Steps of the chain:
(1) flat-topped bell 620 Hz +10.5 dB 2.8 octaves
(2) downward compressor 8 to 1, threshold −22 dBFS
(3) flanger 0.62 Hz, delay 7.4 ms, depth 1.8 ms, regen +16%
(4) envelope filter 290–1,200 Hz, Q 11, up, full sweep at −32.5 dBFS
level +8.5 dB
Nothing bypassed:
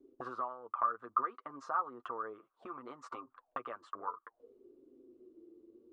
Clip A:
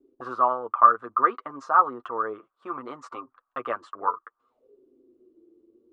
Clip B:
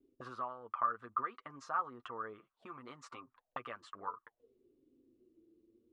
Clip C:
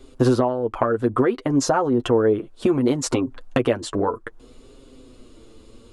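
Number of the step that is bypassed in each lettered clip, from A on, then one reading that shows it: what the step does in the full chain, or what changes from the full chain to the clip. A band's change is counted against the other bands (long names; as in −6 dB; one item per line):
2, average gain reduction 11.0 dB
1, 4 kHz band +7.5 dB
4, 1 kHz band −21.0 dB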